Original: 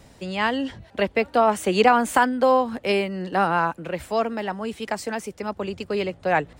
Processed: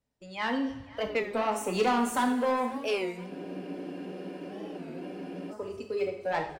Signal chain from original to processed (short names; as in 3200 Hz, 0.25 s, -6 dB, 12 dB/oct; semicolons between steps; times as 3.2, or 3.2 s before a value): gate -42 dBFS, range -17 dB; spectral noise reduction 12 dB; soft clip -17 dBFS, distortion -10 dB; on a send: feedback echo 0.509 s, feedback 54%, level -21.5 dB; on the sum: two-slope reverb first 0.68 s, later 2.9 s, DRR 2.5 dB; spectral freeze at 3.32, 2.20 s; record warp 33 1/3 rpm, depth 160 cents; gain -6.5 dB